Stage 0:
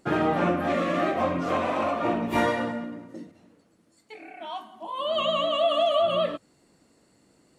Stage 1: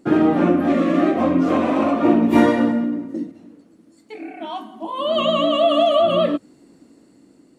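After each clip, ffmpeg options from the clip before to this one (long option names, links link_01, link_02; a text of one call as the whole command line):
ffmpeg -i in.wav -af "equalizer=frequency=280:width_type=o:width=1.1:gain=13.5,dynaudnorm=framelen=570:gausssize=5:maxgain=4.5dB" out.wav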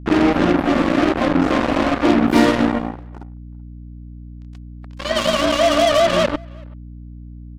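ffmpeg -i in.wav -filter_complex "[0:a]acrusher=bits=2:mix=0:aa=0.5,aeval=exprs='val(0)+0.02*(sin(2*PI*60*n/s)+sin(2*PI*2*60*n/s)/2+sin(2*PI*3*60*n/s)/3+sin(2*PI*4*60*n/s)/4+sin(2*PI*5*60*n/s)/5)':channel_layout=same,asplit=2[link_01][link_02];[link_02]adelay=380,highpass=300,lowpass=3400,asoftclip=type=hard:threshold=-12dB,volume=-27dB[link_03];[link_01][link_03]amix=inputs=2:normalize=0" out.wav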